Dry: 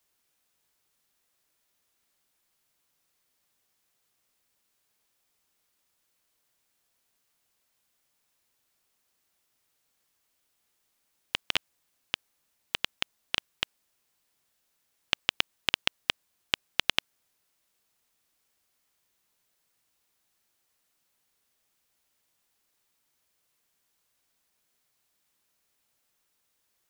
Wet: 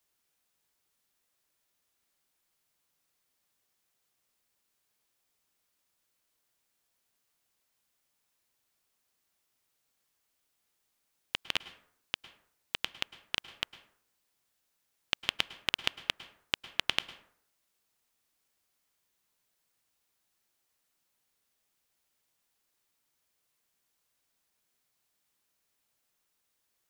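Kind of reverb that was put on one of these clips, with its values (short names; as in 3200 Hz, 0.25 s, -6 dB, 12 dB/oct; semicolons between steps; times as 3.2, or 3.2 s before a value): plate-style reverb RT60 0.63 s, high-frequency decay 0.5×, pre-delay 95 ms, DRR 15 dB; gain -3.5 dB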